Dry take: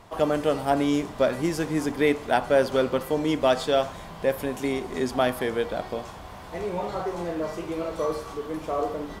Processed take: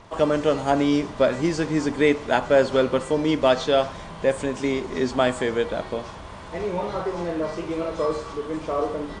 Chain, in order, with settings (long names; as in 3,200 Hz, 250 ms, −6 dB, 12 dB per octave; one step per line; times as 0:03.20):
hearing-aid frequency compression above 3,800 Hz 1.5 to 1
notch filter 740 Hz, Q 12
level +3 dB